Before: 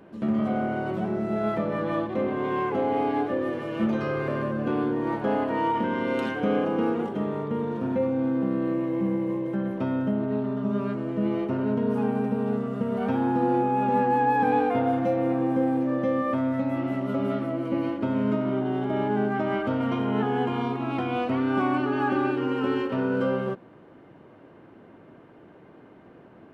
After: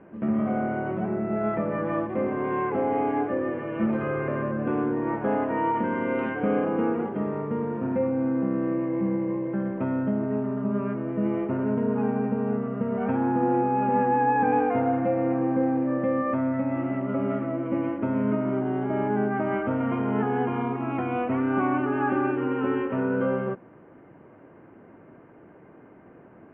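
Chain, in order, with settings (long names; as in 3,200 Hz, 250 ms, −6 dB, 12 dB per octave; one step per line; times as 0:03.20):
Butterworth low-pass 2,500 Hz 36 dB per octave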